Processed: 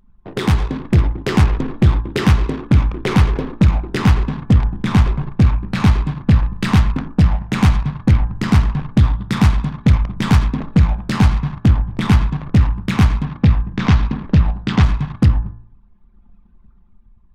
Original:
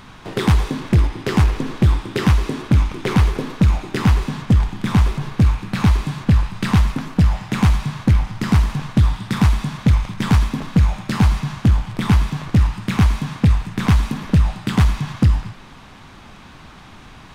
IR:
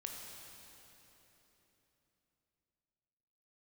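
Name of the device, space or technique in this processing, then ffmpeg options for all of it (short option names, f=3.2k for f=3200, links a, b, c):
voice memo with heavy noise removal: -filter_complex "[0:a]asplit=3[a][b][c];[a]afade=t=out:st=13.25:d=0.02[d];[b]lowpass=f=6.3k:w=0.5412,lowpass=f=6.3k:w=1.3066,afade=t=in:st=13.25:d=0.02,afade=t=out:st=14.82:d=0.02[e];[c]afade=t=in:st=14.82:d=0.02[f];[d][e][f]amix=inputs=3:normalize=0,anlmdn=63.1,dynaudnorm=f=230:g=7:m=4dB,bandreject=f=56.96:t=h:w=4,bandreject=f=113.92:t=h:w=4,bandreject=f=170.88:t=h:w=4,bandreject=f=227.84:t=h:w=4,bandreject=f=284.8:t=h:w=4,bandreject=f=341.76:t=h:w=4,bandreject=f=398.72:t=h:w=4,bandreject=f=455.68:t=h:w=4,bandreject=f=512.64:t=h:w=4,bandreject=f=569.6:t=h:w=4,bandreject=f=626.56:t=h:w=4,bandreject=f=683.52:t=h:w=4,bandreject=f=740.48:t=h:w=4,bandreject=f=797.44:t=h:w=4,bandreject=f=854.4:t=h:w=4,bandreject=f=911.36:t=h:w=4,bandreject=f=968.32:t=h:w=4,bandreject=f=1.02528k:t=h:w=4,bandreject=f=1.08224k:t=h:w=4,bandreject=f=1.1392k:t=h:w=4,bandreject=f=1.19616k:t=h:w=4,bandreject=f=1.25312k:t=h:w=4,bandreject=f=1.31008k:t=h:w=4,bandreject=f=1.36704k:t=h:w=4,bandreject=f=1.424k:t=h:w=4,bandreject=f=1.48096k:t=h:w=4,bandreject=f=1.53792k:t=h:w=4,bandreject=f=1.59488k:t=h:w=4,bandreject=f=1.65184k:t=h:w=4,bandreject=f=1.7088k:t=h:w=4,bandreject=f=1.76576k:t=h:w=4"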